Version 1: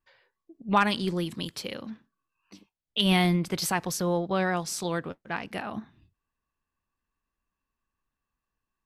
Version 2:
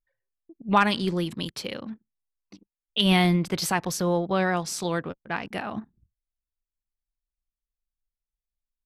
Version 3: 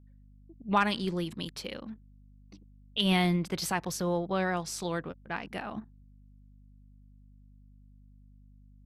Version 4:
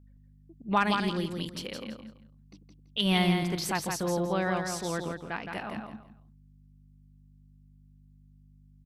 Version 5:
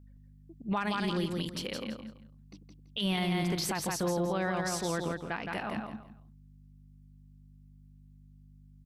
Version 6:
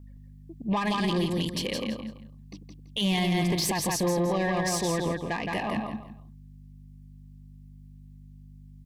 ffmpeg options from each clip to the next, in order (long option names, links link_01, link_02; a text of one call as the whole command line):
ffmpeg -i in.wav -af "anlmdn=0.00631,highshelf=frequency=8900:gain=-4,volume=2.5dB" out.wav
ffmpeg -i in.wav -af "aeval=exprs='val(0)+0.00355*(sin(2*PI*50*n/s)+sin(2*PI*2*50*n/s)/2+sin(2*PI*3*50*n/s)/3+sin(2*PI*4*50*n/s)/4+sin(2*PI*5*50*n/s)/5)':channel_layout=same,volume=-5.5dB" out.wav
ffmpeg -i in.wav -af "aecho=1:1:167|334|501:0.562|0.135|0.0324" out.wav
ffmpeg -i in.wav -af "alimiter=limit=-24dB:level=0:latency=1:release=52,volume=1.5dB" out.wav
ffmpeg -i in.wav -af "asoftclip=type=tanh:threshold=-27.5dB,asuperstop=centerf=1400:order=20:qfactor=4,volume=7.5dB" out.wav